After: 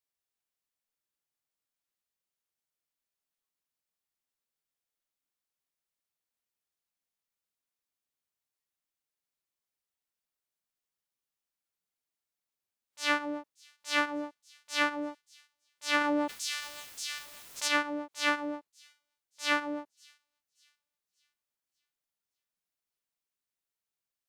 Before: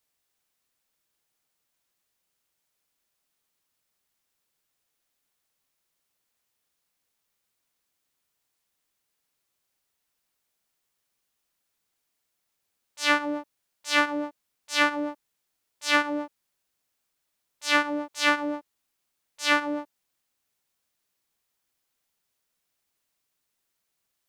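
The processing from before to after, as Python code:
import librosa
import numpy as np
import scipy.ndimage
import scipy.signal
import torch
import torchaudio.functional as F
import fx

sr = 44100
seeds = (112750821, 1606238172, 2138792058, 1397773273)

p1 = fx.noise_reduce_blind(x, sr, reduce_db=7)
p2 = p1 + fx.echo_wet_highpass(p1, sr, ms=580, feedback_pct=37, hz=5000.0, wet_db=-18, dry=0)
p3 = fx.env_flatten(p2, sr, amount_pct=70, at=(16.0, 17.67), fade=0.02)
y = F.gain(torch.from_numpy(p3), -6.0).numpy()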